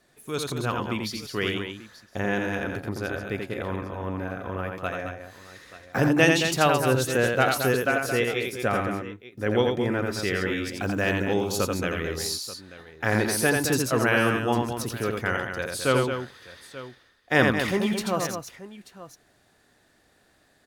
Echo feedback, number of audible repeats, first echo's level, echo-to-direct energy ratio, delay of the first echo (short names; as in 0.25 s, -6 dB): no steady repeat, 3, -4.0 dB, -2.5 dB, 85 ms